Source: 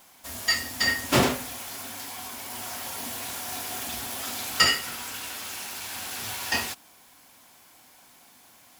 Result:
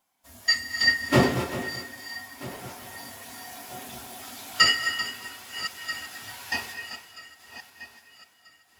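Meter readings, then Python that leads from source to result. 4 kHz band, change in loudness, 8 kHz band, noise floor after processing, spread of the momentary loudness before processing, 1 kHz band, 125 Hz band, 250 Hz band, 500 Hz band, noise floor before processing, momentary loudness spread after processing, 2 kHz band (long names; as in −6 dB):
+1.0 dB, +2.5 dB, −5.5 dB, −61 dBFS, 14 LU, −1.0 dB, +3.5 dB, +2.0 dB, +1.5 dB, −55 dBFS, 20 LU, +2.5 dB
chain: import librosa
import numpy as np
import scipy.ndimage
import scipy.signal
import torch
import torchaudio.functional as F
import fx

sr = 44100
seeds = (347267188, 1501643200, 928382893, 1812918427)

p1 = fx.reverse_delay_fb(x, sr, ms=642, feedback_pct=67, wet_db=-9.5)
p2 = p1 + fx.echo_single(p1, sr, ms=389, db=-9.5, dry=0)
p3 = fx.rev_gated(p2, sr, seeds[0], gate_ms=280, shape='rising', drr_db=7.0)
y = fx.spectral_expand(p3, sr, expansion=1.5)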